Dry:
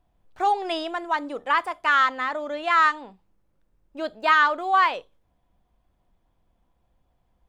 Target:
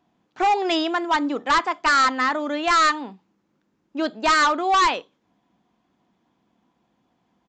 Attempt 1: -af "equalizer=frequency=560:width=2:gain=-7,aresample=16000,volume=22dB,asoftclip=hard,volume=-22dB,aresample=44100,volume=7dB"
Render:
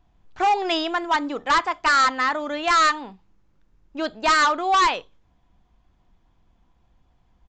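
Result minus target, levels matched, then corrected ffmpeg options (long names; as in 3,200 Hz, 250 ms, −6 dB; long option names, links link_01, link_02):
250 Hz band −3.5 dB
-af "highpass=frequency=230:width_type=q:width=1.7,equalizer=frequency=560:width=2:gain=-7,aresample=16000,volume=22dB,asoftclip=hard,volume=-22dB,aresample=44100,volume=7dB"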